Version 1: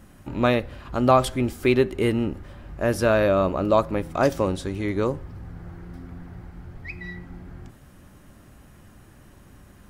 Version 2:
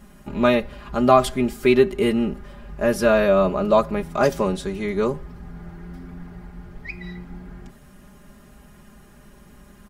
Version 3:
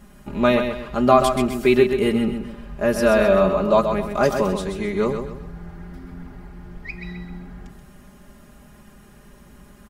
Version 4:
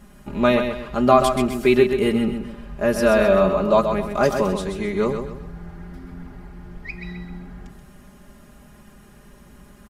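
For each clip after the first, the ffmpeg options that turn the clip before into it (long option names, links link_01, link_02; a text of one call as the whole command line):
ffmpeg -i in.wav -af "aecho=1:1:4.9:0.8" out.wav
ffmpeg -i in.wav -af "aecho=1:1:130|260|390|520:0.447|0.165|0.0612|0.0226" out.wav
ffmpeg -i in.wav -af "aresample=32000,aresample=44100" out.wav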